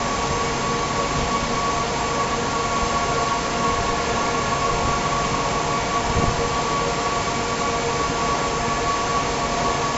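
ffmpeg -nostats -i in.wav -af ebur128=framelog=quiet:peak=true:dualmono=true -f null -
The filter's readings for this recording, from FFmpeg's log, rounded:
Integrated loudness:
  I:         -18.6 LUFS
  Threshold: -28.6 LUFS
Loudness range:
  LRA:         0.5 LU
  Threshold: -38.5 LUFS
  LRA low:   -18.8 LUFS
  LRA high:  -18.3 LUFS
True peak:
  Peak:       -7.0 dBFS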